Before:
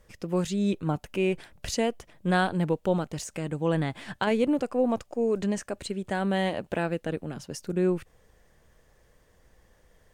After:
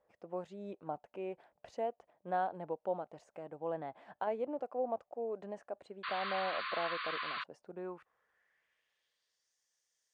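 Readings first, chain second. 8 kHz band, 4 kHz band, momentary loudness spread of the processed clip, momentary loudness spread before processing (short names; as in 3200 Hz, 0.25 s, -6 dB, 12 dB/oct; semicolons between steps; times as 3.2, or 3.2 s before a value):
under -30 dB, -8.0 dB, 12 LU, 8 LU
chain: painted sound noise, 6.03–7.44, 1000–4700 Hz -20 dBFS; band-pass sweep 710 Hz -> 6000 Hz, 7.65–9.54; gain -4.5 dB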